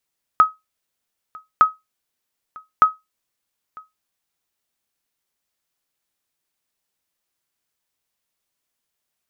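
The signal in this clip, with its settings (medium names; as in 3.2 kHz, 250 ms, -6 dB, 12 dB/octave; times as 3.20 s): sonar ping 1.27 kHz, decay 0.19 s, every 1.21 s, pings 3, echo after 0.95 s, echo -26 dB -3.5 dBFS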